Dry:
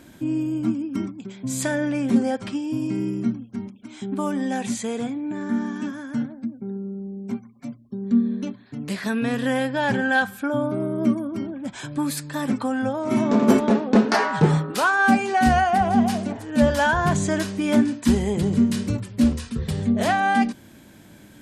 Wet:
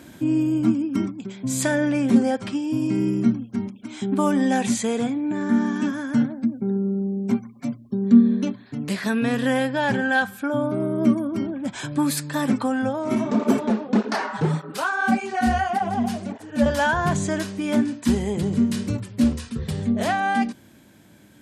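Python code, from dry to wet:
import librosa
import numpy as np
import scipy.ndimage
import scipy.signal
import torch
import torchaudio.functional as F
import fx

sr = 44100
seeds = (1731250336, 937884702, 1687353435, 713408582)

y = fx.flanger_cancel(x, sr, hz=1.7, depth_ms=7.6, at=(13.15, 16.66))
y = scipy.signal.sosfilt(scipy.signal.butter(2, 58.0, 'highpass', fs=sr, output='sos'), y)
y = fx.rider(y, sr, range_db=10, speed_s=2.0)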